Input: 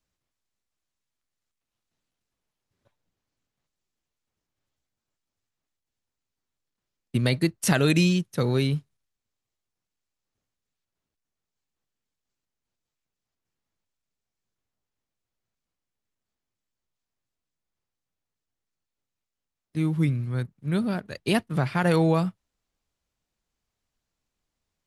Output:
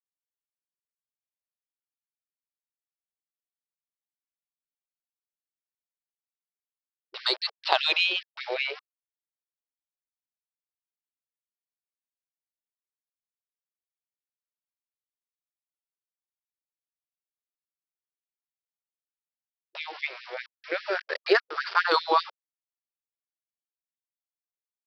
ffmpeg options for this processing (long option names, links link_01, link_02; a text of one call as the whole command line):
ffmpeg -i in.wav -af "afftfilt=real='re*pow(10,15/40*sin(2*PI*(0.51*log(max(b,1)*sr/1024/100)/log(2)-(-0.34)*(pts-256)/sr)))':imag='im*pow(10,15/40*sin(2*PI*(0.51*log(max(b,1)*sr/1024/100)/log(2)-(-0.34)*(pts-256)/sr)))':win_size=1024:overlap=0.75,dynaudnorm=framelen=310:gausssize=13:maxgain=4dB,aresample=11025,aeval=exprs='val(0)*gte(abs(val(0)),0.0282)':channel_layout=same,aresample=44100,aeval=exprs='0.841*(cos(1*acos(clip(val(0)/0.841,-1,1)))-cos(1*PI/2))+0.119*(cos(2*acos(clip(val(0)/0.841,-1,1)))-cos(2*PI/2))':channel_layout=same,afftfilt=real='re*gte(b*sr/1024,340*pow(1700/340,0.5+0.5*sin(2*PI*5*pts/sr)))':imag='im*gte(b*sr/1024,340*pow(1700/340,0.5+0.5*sin(2*PI*5*pts/sr)))':win_size=1024:overlap=0.75" out.wav